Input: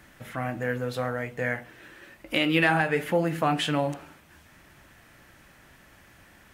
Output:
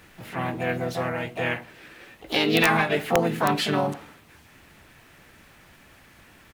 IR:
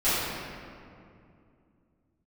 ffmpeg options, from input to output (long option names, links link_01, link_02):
-filter_complex "[0:a]asplit=4[link_01][link_02][link_03][link_04];[link_02]asetrate=33038,aresample=44100,atempo=1.33484,volume=-13dB[link_05];[link_03]asetrate=58866,aresample=44100,atempo=0.749154,volume=-4dB[link_06];[link_04]asetrate=66075,aresample=44100,atempo=0.66742,volume=-8dB[link_07];[link_01][link_05][link_06][link_07]amix=inputs=4:normalize=0,aeval=exprs='(mod(2.51*val(0)+1,2)-1)/2.51':channel_layout=same"